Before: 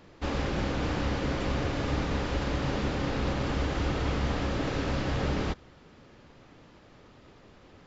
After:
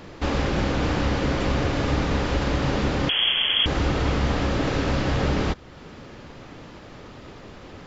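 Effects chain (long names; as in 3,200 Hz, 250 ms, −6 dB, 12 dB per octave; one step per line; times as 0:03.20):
in parallel at +3 dB: downward compressor, threshold −43 dBFS, peak gain reduction 17.5 dB
0:03.09–0:03.66: on the sum: voice inversion scrambler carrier 3,300 Hz
level +4.5 dB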